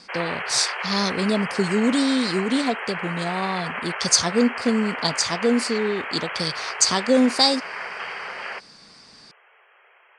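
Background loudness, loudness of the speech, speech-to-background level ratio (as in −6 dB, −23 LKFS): −30.0 LKFS, −22.5 LKFS, 7.5 dB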